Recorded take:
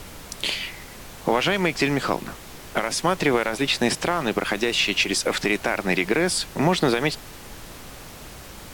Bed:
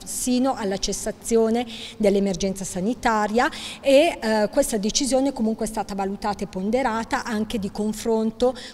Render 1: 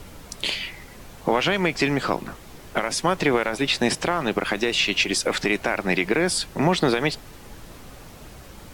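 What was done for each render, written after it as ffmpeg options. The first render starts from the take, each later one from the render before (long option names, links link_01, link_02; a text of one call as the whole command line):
ffmpeg -i in.wav -af "afftdn=noise_reduction=6:noise_floor=-41" out.wav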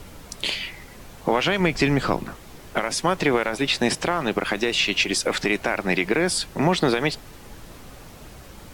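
ffmpeg -i in.wav -filter_complex "[0:a]asettb=1/sr,asplit=3[link_01][link_02][link_03];[link_01]atrim=end=1.604[link_04];[link_02]atrim=start=1.6:end=2.24,asetpts=PTS-STARTPTS,afade=type=in:duration=0.004:curve=qsin,afade=type=out:start_time=0.636:duration=0.004:curve=qsin,lowshelf=frequency=160:gain=9[link_05];[link_03]atrim=start=2.236[link_06];[link_04][link_05]acrossfade=duration=0.004:curve1=hsin:curve2=qsin[link_07];[link_07][link_06]acrossfade=duration=0.004:curve1=qsin:curve2=hsin" out.wav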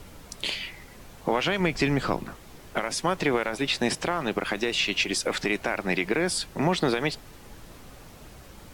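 ffmpeg -i in.wav -af "volume=-4dB" out.wav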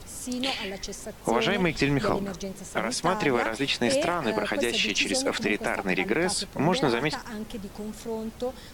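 ffmpeg -i in.wav -i bed.wav -filter_complex "[1:a]volume=-11dB[link_01];[0:a][link_01]amix=inputs=2:normalize=0" out.wav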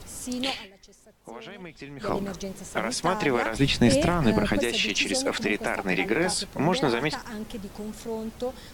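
ffmpeg -i in.wav -filter_complex "[0:a]asettb=1/sr,asplit=3[link_01][link_02][link_03];[link_01]atrim=end=3.554[link_04];[link_02]atrim=start=3.55:end=4.59,asetpts=PTS-STARTPTS,afade=type=in:duration=0.004:curve=qsin,afade=type=out:start_time=1.036:duration=0.004:curve=qsin,bass=frequency=250:gain=15,treble=frequency=4000:gain=2[link_05];[link_03]atrim=start=4.586[link_06];[link_04][link_05]acrossfade=duration=0.004:curve1=hsin:curve2=qsin[link_07];[link_07][link_06]acrossfade=duration=0.004:curve1=qsin:curve2=hsin,asettb=1/sr,asplit=3[link_08][link_09][link_10];[link_08]atrim=end=5.904[link_11];[link_09]atrim=start=5.9:end=6.38,asetpts=PTS-STARTPTS,afade=type=in:duration=0.004:curve=qsin,afade=type=out:start_time=0.476:duration=0.004:curve=qsin,asplit=2[link_12][link_13];[link_13]adelay=18,volume=-7.5dB[link_14];[link_12][link_14]amix=inputs=2:normalize=0,atrim=end_sample=21168[link_15];[link_10]atrim=start=6.376[link_16];[link_11][link_15]acrossfade=duration=0.004:curve1=hsin:curve2=qsin[link_17];[link_17][link_16]acrossfade=duration=0.004:curve1=qsin:curve2=hsin,asplit=3[link_18][link_19][link_20];[link_18]atrim=end=0.68,asetpts=PTS-STARTPTS,afade=type=out:start_time=0.49:duration=0.19:silence=0.141254[link_21];[link_19]atrim=start=0.68:end=1.97,asetpts=PTS-STARTPTS,volume=-17dB[link_22];[link_20]atrim=start=1.97,asetpts=PTS-STARTPTS,afade=type=in:duration=0.19:silence=0.141254[link_23];[link_21][link_22][link_23]concat=n=3:v=0:a=1" out.wav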